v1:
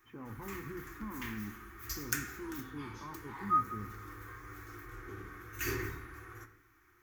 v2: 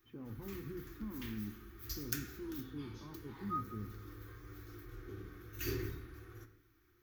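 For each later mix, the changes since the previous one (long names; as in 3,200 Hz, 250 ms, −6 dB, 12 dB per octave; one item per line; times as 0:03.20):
master: add octave-band graphic EQ 1,000/2,000/4,000/8,000 Hz −11/−9/+5/−11 dB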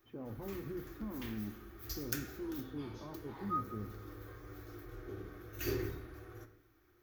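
master: add parametric band 630 Hz +14.5 dB 0.85 octaves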